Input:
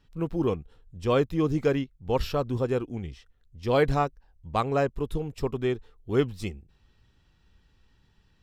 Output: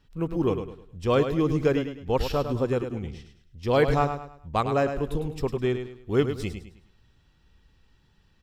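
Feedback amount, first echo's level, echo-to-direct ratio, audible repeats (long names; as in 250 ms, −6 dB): 34%, −8.5 dB, −8.0 dB, 3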